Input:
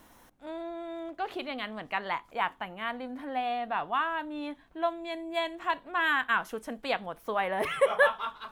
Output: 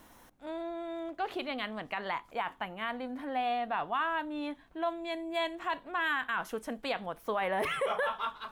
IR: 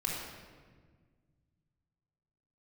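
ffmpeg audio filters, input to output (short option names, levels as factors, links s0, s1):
-af "alimiter=limit=0.075:level=0:latency=1:release=23"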